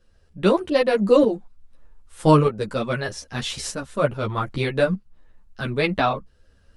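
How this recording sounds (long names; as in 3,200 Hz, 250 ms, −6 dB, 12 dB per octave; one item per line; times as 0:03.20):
tremolo saw up 0.81 Hz, depth 60%
a shimmering, thickened sound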